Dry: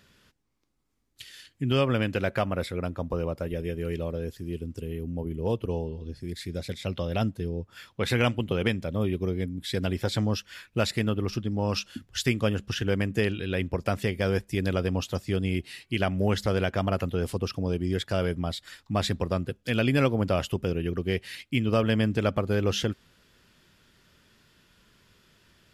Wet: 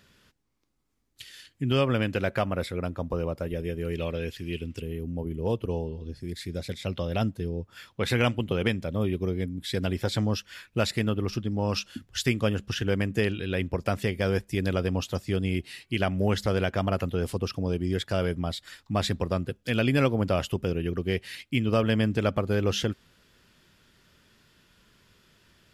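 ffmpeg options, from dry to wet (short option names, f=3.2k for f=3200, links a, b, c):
-filter_complex "[0:a]asettb=1/sr,asplit=3[a][b][c];[a]atrim=end=3.984[d];[b]atrim=start=3.98:end=4.82,asetpts=PTS-STARTPTS,afade=t=in:d=0.004:c=qsin,afade=t=out:st=0.836:d=0.004:c=qsin,equalizer=f=2.6k:t=o:w=1.4:g=14.5[e];[c]atrim=start=4.816[f];[d][e]acrossfade=d=0.004:c1=hsin:c2=qsin[g];[g][f]acrossfade=d=0.004:c1=qsin:c2=hsin"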